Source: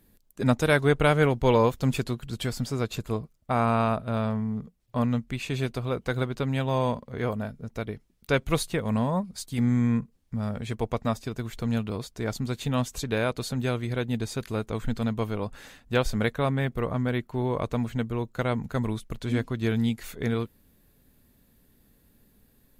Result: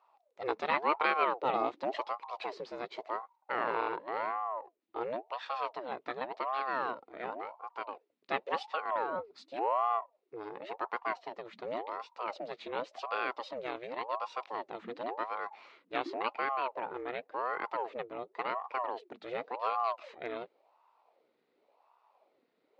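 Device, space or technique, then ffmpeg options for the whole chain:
voice changer toy: -af "aeval=exprs='val(0)*sin(2*PI*580*n/s+580*0.65/0.91*sin(2*PI*0.91*n/s))':channel_layout=same,highpass=540,equalizer=frequency=730:width_type=q:width=4:gain=-3,equalizer=frequency=1600:width_type=q:width=4:gain=-5,equalizer=frequency=3200:width_type=q:width=4:gain=-6,lowpass=frequency=3800:width=0.5412,lowpass=frequency=3800:width=1.3066,volume=-2dB"

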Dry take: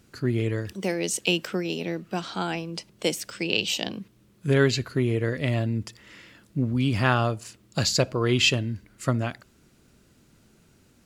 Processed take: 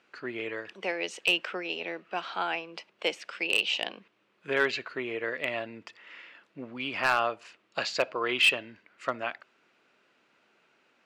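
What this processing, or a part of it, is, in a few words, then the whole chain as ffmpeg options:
megaphone: -af "highpass=650,lowpass=2600,equalizer=frequency=2600:width_type=o:width=0.44:gain=4.5,asoftclip=type=hard:threshold=-17dB,volume=1.5dB"

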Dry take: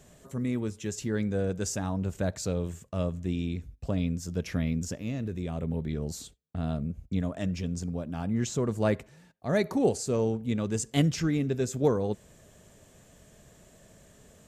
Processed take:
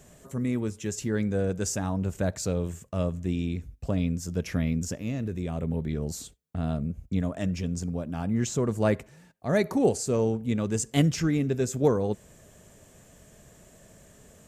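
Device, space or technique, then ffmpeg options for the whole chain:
exciter from parts: -filter_complex "[0:a]asplit=2[link_01][link_02];[link_02]highpass=frequency=3500:width=0.5412,highpass=frequency=3500:width=1.3066,asoftclip=type=tanh:threshold=-27dB,volume=-10dB[link_03];[link_01][link_03]amix=inputs=2:normalize=0,volume=2dB"

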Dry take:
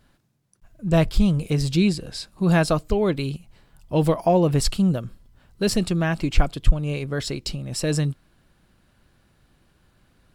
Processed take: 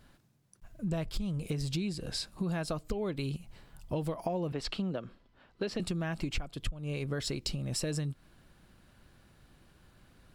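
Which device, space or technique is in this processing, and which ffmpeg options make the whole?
serial compression, peaks first: -filter_complex "[0:a]asettb=1/sr,asplit=3[link_01][link_02][link_03];[link_01]atrim=end=4.524[link_04];[link_02]atrim=start=4.52:end=5.8,asetpts=PTS-STARTPTS,afade=type=in:duration=0.004:curve=qsin,afade=type=out:start_time=1.276:duration=0.004:curve=qsin,acrossover=split=230 4600:gain=0.178 1 0.0794[link_05][link_06][link_07];[link_05][link_06][link_07]amix=inputs=3:normalize=0[link_08];[link_03]atrim=start=5.796[link_09];[link_04][link_08]acrossfade=duration=0.004:curve1=hsin:curve2=qsin[link_10];[link_10][link_09]acrossfade=duration=0.004:curve1=qsin:curve2=hsin,acompressor=threshold=-26dB:ratio=5,acompressor=threshold=-34dB:ratio=2"

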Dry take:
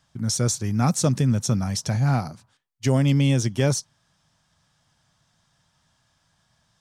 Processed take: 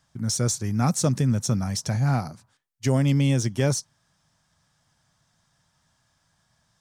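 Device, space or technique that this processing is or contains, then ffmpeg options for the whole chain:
exciter from parts: -filter_complex "[0:a]asplit=2[link_01][link_02];[link_02]highpass=2100,asoftclip=type=tanh:threshold=-28.5dB,highpass=frequency=2100:width=0.5412,highpass=frequency=2100:width=1.3066,volume=-10dB[link_03];[link_01][link_03]amix=inputs=2:normalize=0,volume=-1.5dB"

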